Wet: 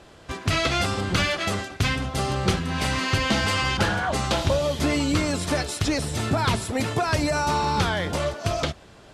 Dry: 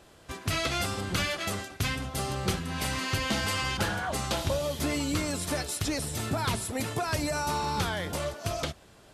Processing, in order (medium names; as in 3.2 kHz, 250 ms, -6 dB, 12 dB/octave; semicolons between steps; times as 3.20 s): distance through air 53 m; trim +7 dB